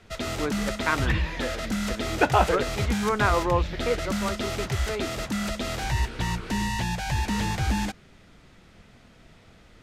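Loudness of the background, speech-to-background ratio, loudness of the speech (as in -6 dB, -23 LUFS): -29.0 LUFS, 1.0 dB, -28.0 LUFS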